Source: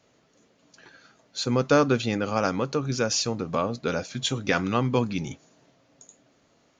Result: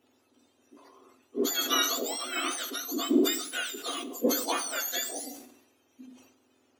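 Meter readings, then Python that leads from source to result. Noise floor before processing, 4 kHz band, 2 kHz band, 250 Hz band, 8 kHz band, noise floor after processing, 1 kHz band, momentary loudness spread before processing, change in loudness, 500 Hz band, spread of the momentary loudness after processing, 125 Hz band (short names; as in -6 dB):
-65 dBFS, +1.5 dB, -3.5 dB, -4.0 dB, +3.0 dB, -69 dBFS, -6.0 dB, 9 LU, -3.5 dB, -7.5 dB, 10 LU, under -30 dB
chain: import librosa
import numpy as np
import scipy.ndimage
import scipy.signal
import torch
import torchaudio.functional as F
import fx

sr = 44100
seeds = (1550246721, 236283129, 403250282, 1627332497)

y = fx.octave_mirror(x, sr, pivot_hz=1300.0)
y = fx.rev_plate(y, sr, seeds[0], rt60_s=0.66, hf_ratio=1.0, predelay_ms=0, drr_db=13.0)
y = fx.sustainer(y, sr, db_per_s=70.0)
y = F.gain(torch.from_numpy(y), -3.0).numpy()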